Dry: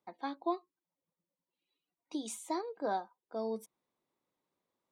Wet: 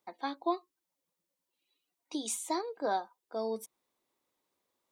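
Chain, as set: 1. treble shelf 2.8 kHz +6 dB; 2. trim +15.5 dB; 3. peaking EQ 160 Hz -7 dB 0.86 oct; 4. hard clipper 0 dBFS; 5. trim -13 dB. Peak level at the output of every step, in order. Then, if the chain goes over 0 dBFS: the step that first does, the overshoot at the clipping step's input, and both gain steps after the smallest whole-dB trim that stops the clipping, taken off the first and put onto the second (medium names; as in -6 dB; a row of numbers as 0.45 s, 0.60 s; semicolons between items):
-21.0 dBFS, -5.5 dBFS, -5.5 dBFS, -5.5 dBFS, -18.5 dBFS; nothing clips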